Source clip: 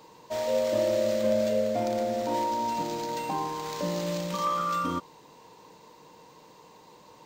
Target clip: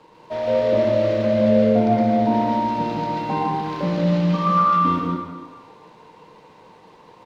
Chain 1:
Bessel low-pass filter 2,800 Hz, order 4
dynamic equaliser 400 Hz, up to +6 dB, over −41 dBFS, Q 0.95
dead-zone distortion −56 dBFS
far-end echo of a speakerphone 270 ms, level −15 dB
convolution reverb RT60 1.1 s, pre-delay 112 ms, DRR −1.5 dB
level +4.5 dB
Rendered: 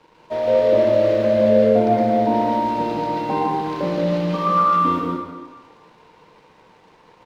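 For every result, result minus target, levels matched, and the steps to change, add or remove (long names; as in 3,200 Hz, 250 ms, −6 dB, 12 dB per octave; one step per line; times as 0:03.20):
125 Hz band −5.0 dB; dead-zone distortion: distortion +5 dB
change: dynamic equaliser 170 Hz, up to +6 dB, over −41 dBFS, Q 0.95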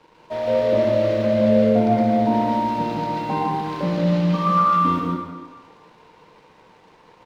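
dead-zone distortion: distortion +6 dB
change: dead-zone distortion −63 dBFS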